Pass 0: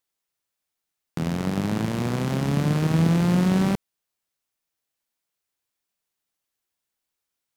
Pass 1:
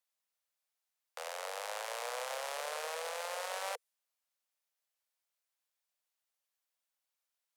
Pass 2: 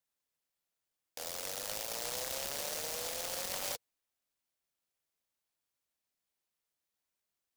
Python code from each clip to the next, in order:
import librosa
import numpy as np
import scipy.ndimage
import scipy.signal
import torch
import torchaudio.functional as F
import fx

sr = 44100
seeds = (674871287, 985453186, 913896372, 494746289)

y1 = fx.cheby_harmonics(x, sr, harmonics=(5,), levels_db=(-26,), full_scale_db=-9.5)
y1 = fx.dynamic_eq(y1, sr, hz=9500.0, q=0.91, threshold_db=-57.0, ratio=4.0, max_db=5)
y1 = scipy.signal.sosfilt(scipy.signal.butter(16, 480.0, 'highpass', fs=sr, output='sos'), y1)
y1 = y1 * 10.0 ** (-7.0 / 20.0)
y2 = fx.noise_mod_delay(y1, sr, seeds[0], noise_hz=5200.0, depth_ms=0.27)
y2 = y2 * 10.0 ** (1.0 / 20.0)